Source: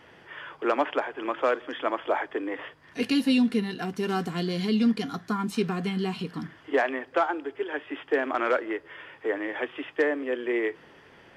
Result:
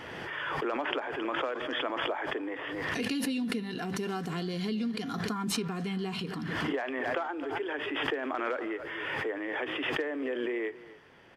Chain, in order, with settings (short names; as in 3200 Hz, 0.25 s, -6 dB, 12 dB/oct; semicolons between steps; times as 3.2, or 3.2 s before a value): compressor, threshold -25 dBFS, peak gain reduction 7 dB; echo 0.265 s -18.5 dB; backwards sustainer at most 21 dB/s; gain -4.5 dB